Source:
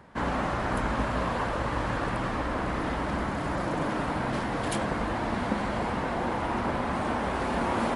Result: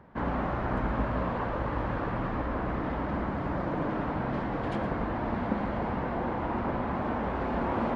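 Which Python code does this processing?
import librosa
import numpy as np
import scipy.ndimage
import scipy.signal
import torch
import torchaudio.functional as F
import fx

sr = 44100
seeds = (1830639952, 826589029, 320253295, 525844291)

p1 = fx.spacing_loss(x, sr, db_at_10k=32)
y = p1 + fx.echo_single(p1, sr, ms=115, db=-12.5, dry=0)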